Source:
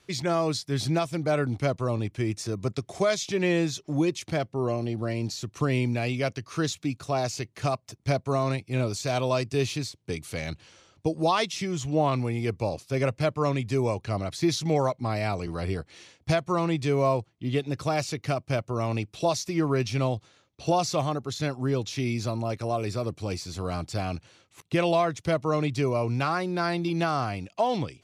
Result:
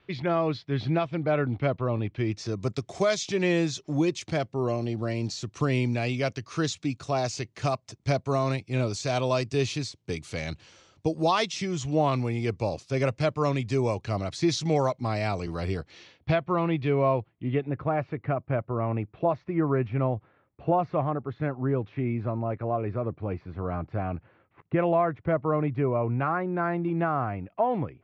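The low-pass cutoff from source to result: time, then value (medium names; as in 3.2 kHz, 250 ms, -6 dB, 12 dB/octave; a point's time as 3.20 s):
low-pass 24 dB/octave
2.04 s 3.3 kHz
2.64 s 7.8 kHz
15.73 s 7.8 kHz
16.40 s 3.1 kHz
17.18 s 3.1 kHz
17.84 s 1.9 kHz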